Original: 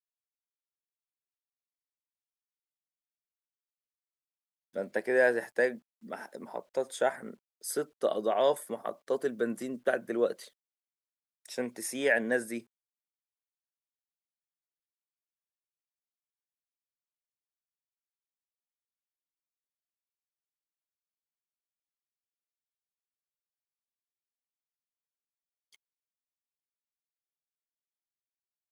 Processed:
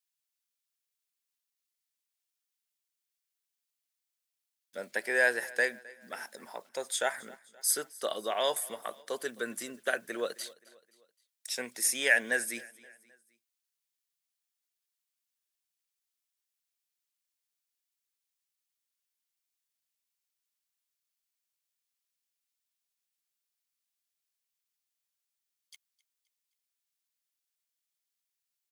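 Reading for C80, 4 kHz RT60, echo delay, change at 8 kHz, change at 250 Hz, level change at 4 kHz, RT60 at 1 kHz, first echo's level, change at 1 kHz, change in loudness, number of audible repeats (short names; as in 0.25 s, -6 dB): none, none, 0.262 s, +9.5 dB, -8.5 dB, +8.0 dB, none, -22.0 dB, -2.0 dB, 0.0 dB, 3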